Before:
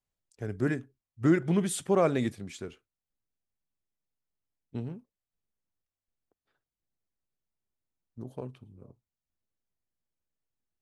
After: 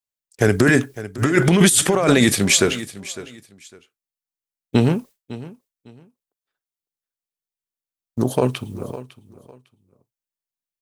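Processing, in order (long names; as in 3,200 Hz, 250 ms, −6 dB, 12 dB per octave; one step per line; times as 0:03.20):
downward expander −54 dBFS
spectral tilt +2.5 dB per octave
compressor whose output falls as the input rises −35 dBFS, ratio −1
repeating echo 554 ms, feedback 23%, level −17.5 dB
boost into a limiter +24.5 dB
level −2.5 dB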